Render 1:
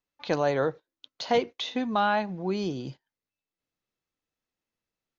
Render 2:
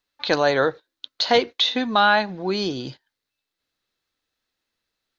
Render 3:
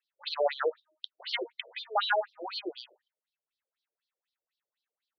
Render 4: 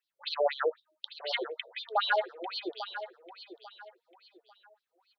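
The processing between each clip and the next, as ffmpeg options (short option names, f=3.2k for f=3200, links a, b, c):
-af "equalizer=f=160:t=o:w=0.67:g=-6,equalizer=f=1.6k:t=o:w=0.67:g=6,equalizer=f=4k:t=o:w=0.67:g=10,volume=5.5dB"
-af "bandreject=f=310.4:t=h:w=4,bandreject=f=620.8:t=h:w=4,bandreject=f=931.2:t=h:w=4,bandreject=f=1.2416k:t=h:w=4,afftfilt=real='re*between(b*sr/1024,470*pow(4300/470,0.5+0.5*sin(2*PI*4*pts/sr))/1.41,470*pow(4300/470,0.5+0.5*sin(2*PI*4*pts/sr))*1.41)':imag='im*between(b*sr/1024,470*pow(4300/470,0.5+0.5*sin(2*PI*4*pts/sr))/1.41,470*pow(4300/470,0.5+0.5*sin(2*PI*4*pts/sr))*1.41)':win_size=1024:overlap=0.75,volume=-4.5dB"
-af "aecho=1:1:845|1690|2535:0.251|0.0728|0.0211"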